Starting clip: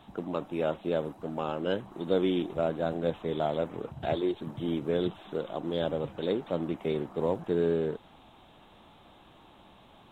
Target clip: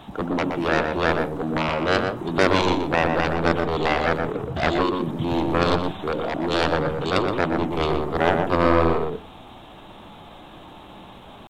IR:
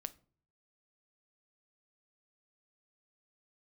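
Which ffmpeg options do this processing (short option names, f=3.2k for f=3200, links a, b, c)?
-filter_complex "[0:a]aeval=exprs='0.224*(cos(1*acos(clip(val(0)/0.224,-1,1)))-cos(1*PI/2))+0.0891*(cos(7*acos(clip(val(0)/0.224,-1,1)))-cos(7*PI/2))':c=same,atempo=0.88,asplit=2[a][b];[1:a]atrim=start_sample=2205,highshelf=f=2.1k:g=-10.5,adelay=121[c];[b][c]afir=irnorm=-1:irlink=0,volume=0.5dB[d];[a][d]amix=inputs=2:normalize=0,volume=6.5dB"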